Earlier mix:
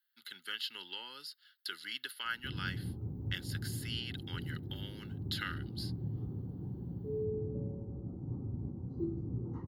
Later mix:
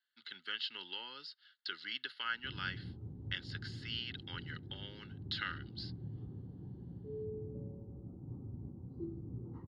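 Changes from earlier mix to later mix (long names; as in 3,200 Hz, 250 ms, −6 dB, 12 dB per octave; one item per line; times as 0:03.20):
background −6.5 dB
master: add low-pass filter 4,900 Hz 24 dB per octave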